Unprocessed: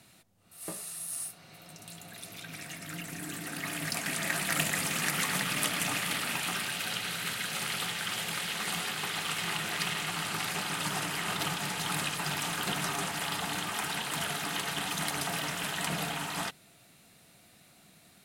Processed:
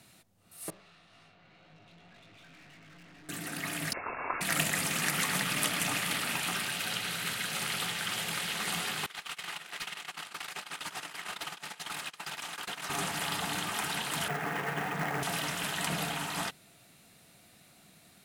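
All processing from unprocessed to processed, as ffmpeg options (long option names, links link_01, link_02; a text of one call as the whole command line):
ffmpeg -i in.wav -filter_complex "[0:a]asettb=1/sr,asplit=3[link_01][link_02][link_03];[link_01]atrim=end=0.704[link_04];[link_02]atrim=start=0.7:end=3.29,asetpts=PTS-STARTPTS,afade=type=in:duration=0.004:curve=qsin,afade=type=out:start_time=2.586:duration=0.004:curve=qsin,lowpass=frequency=3500:width=0.5412,lowpass=frequency=3500:width=1.3066,flanger=delay=19:depth=3.7:speed=1.9,aeval=exprs='(tanh(447*val(0)+0.35)-tanh(0.35))/447':channel_layout=same[link_05];[link_03]atrim=start=3.286[link_06];[link_04][link_05]acrossfade=duration=0.004:curve1=hsin:curve2=qsin[link_07];[link_07][link_06]acrossfade=duration=0.004:curve1=qsin:curve2=hsin,asettb=1/sr,asplit=3[link_08][link_09][link_10];[link_08]atrim=end=3.934[link_11];[link_09]atrim=start=3.93:end=4.41,asetpts=PTS-STARTPTS,afade=type=in:duration=0.004:curve=qsin,afade=type=out:start_time=0.476:duration=0.004:curve=qsin,highpass=frequency=610:poles=1,lowpass=frequency=2500:width_type=q:width=0.5098,lowpass=frequency=2500:width_type=q:width=0.6013,lowpass=frequency=2500:width_type=q:width=0.9,lowpass=frequency=2500:width_type=q:width=2.563,afreqshift=-2900[link_12];[link_10]atrim=start=4.406[link_13];[link_11][link_12]acrossfade=duration=0.004:curve1=hsin:curve2=qsin[link_14];[link_14][link_13]acrossfade=duration=0.004:curve1=qsin:curve2=hsin,asettb=1/sr,asplit=3[link_15][link_16][link_17];[link_15]atrim=end=9.064[link_18];[link_16]atrim=start=9.06:end=12.9,asetpts=PTS-STARTPTS,afade=type=in:duration=0.004:curve=qsin,afade=type=out:start_time=3.836:duration=0.004:curve=qsin,agate=range=-43dB:threshold=-31dB:ratio=16:release=100:detection=peak,acompressor=threshold=-56dB:ratio=4:attack=3.2:release=140:knee=1:detection=peak,asplit=2[link_19][link_20];[link_20]highpass=frequency=720:poles=1,volume=30dB,asoftclip=type=tanh:threshold=-26dB[link_21];[link_19][link_21]amix=inputs=2:normalize=0,lowpass=frequency=7800:poles=1,volume=-6dB[link_22];[link_17]atrim=start=12.896[link_23];[link_18][link_22]acrossfade=duration=0.004:curve1=hsin:curve2=qsin[link_24];[link_24][link_23]acrossfade=duration=0.004:curve1=qsin:curve2=hsin,asettb=1/sr,asplit=3[link_25][link_26][link_27];[link_25]atrim=end=14.284[link_28];[link_26]atrim=start=14.28:end=15.23,asetpts=PTS-STARTPTS,afade=type=in:duration=0.004:curve=qsin,afade=type=out:start_time=0.946:duration=0.004:curve=qsin,highpass=100,equalizer=frequency=140:width_type=q:width=4:gain=7,equalizer=frequency=460:width_type=q:width=4:gain=8,equalizer=frequency=750:width_type=q:width=4:gain=4,equalizer=frequency=1800:width_type=q:width=4:gain=4,lowpass=frequency=2300:width=0.5412,lowpass=frequency=2300:width=1.3066,acrusher=bits=3:mode=log:mix=0:aa=0.000001[link_29];[link_27]atrim=start=15.226[link_30];[link_28][link_29]acrossfade=duration=0.004:curve1=hsin:curve2=qsin[link_31];[link_31][link_30]acrossfade=duration=0.004:curve1=qsin:curve2=hsin" out.wav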